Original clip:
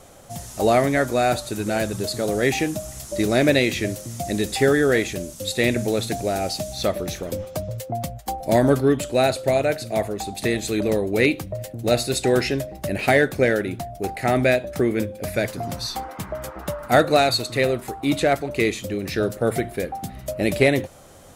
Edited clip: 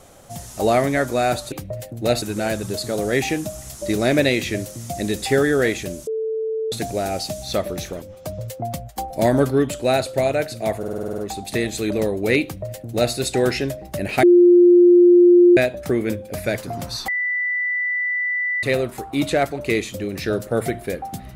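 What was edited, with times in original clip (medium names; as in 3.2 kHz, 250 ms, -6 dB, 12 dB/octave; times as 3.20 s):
5.37–6.02 s: bleep 442 Hz -21 dBFS
7.32–7.69 s: fade in, from -15 dB
10.08 s: stutter 0.05 s, 9 plays
11.34–12.04 s: copy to 1.52 s
13.13–14.47 s: bleep 352 Hz -7.5 dBFS
15.98–17.53 s: bleep 1.98 kHz -19.5 dBFS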